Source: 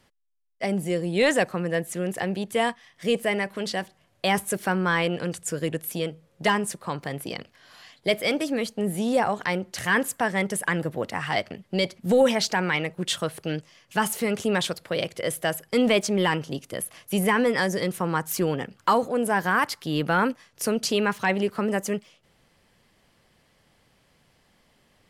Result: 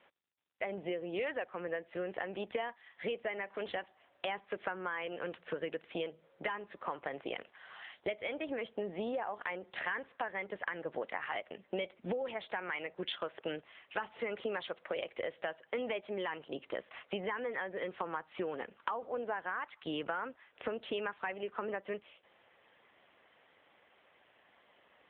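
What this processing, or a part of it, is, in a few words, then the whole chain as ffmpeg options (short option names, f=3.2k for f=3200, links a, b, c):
voicemail: -af "highpass=440,lowpass=3.2k,acompressor=threshold=-36dB:ratio=12,volume=3dB" -ar 8000 -c:a libopencore_amrnb -b:a 7950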